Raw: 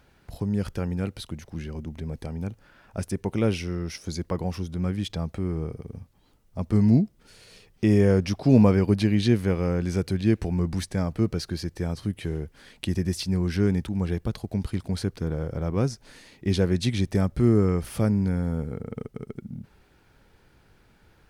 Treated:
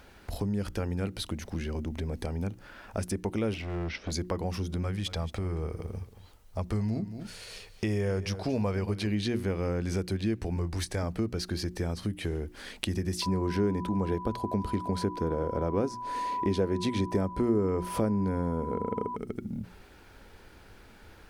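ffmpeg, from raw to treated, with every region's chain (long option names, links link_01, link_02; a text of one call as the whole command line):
ffmpeg -i in.wav -filter_complex "[0:a]asettb=1/sr,asplit=3[link_01][link_02][link_03];[link_01]atrim=end=3.544[link_04];[link_02]atrim=start=3.54:end=4.12,asetpts=PTS-STARTPTS,afade=type=in:duration=0.004:curve=qsin,afade=type=out:start_time=0.576:duration=0.004:curve=qsin,lowpass=frequency=3600:width=0.5412,lowpass=frequency=3600:width=1.3066,asoftclip=type=hard:threshold=-31dB[link_05];[link_03]atrim=start=4.116[link_06];[link_04][link_05]acrossfade=duration=0.004:curve1=hsin:curve2=qsin[link_07];[link_07][link_06]acrossfade=duration=0.004:curve1=qsin:curve2=hsin,asettb=1/sr,asplit=3[link_08][link_09][link_10];[link_08]atrim=end=4.834[link_11];[link_09]atrim=start=4.83:end=9.07,asetpts=PTS-STARTPTS,afade=type=in:duration=0.004:curve=qsin,afade=type=out:start_time=4.236:duration=0.004:curve=qsin,equalizer=frequency=260:width_type=o:width=1.2:gain=-8,aecho=1:1:225:0.15,atrim=end_sample=186984[link_12];[link_10]atrim=start=9.066[link_13];[link_11][link_12]acrossfade=duration=0.004:curve1=hsin:curve2=qsin[link_14];[link_14][link_13]acrossfade=duration=0.004:curve1=qsin:curve2=hsin,asettb=1/sr,asplit=3[link_15][link_16][link_17];[link_15]atrim=end=10.564[link_18];[link_16]atrim=start=10.56:end=11.03,asetpts=PTS-STARTPTS,afade=type=in:duration=0.004:curve=qsin,afade=type=out:start_time=0.466:duration=0.004:curve=qsin,equalizer=frequency=210:width_type=o:width=0.41:gain=-15,asplit=2[link_19][link_20];[link_20]adelay=24,volume=-12.5dB[link_21];[link_19][link_21]amix=inputs=2:normalize=0,atrim=end_sample=20727[link_22];[link_17]atrim=start=11.026[link_23];[link_18][link_22]acrossfade=duration=0.004:curve1=hsin:curve2=qsin[link_24];[link_24][link_23]acrossfade=duration=0.004:curve1=qsin:curve2=hsin,asettb=1/sr,asplit=3[link_25][link_26][link_27];[link_25]atrim=end=13.224[link_28];[link_26]atrim=start=13.22:end=19.16,asetpts=PTS-STARTPTS,afade=type=in:duration=0.004:curve=qsin,afade=type=out:start_time=5.936:duration=0.004:curve=qsin,equalizer=frequency=430:width=0.39:gain=9.5,aeval=exprs='val(0)+0.0251*sin(2*PI*990*n/s)':channel_layout=same[link_29];[link_27]atrim=start=19.156[link_30];[link_28][link_29]acrossfade=duration=0.004:curve1=hsin:curve2=qsin[link_31];[link_31][link_30]acrossfade=duration=0.004:curve1=qsin:curve2=hsin,equalizer=frequency=140:width_type=o:width=0.33:gain=-13.5,bandreject=frequency=60:width_type=h:width=6,bandreject=frequency=120:width_type=h:width=6,bandreject=frequency=180:width_type=h:width=6,bandreject=frequency=240:width_type=h:width=6,bandreject=frequency=300:width_type=h:width=6,bandreject=frequency=360:width_type=h:width=6,acompressor=threshold=-38dB:ratio=3,volume=7dB" out.wav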